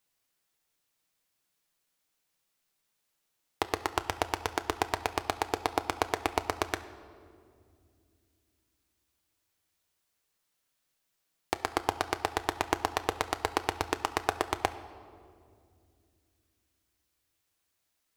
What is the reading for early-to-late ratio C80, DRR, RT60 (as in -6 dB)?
15.0 dB, 9.5 dB, 2.3 s